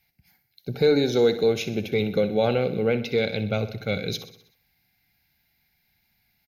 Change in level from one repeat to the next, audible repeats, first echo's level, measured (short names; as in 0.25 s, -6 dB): -5.0 dB, 5, -13.0 dB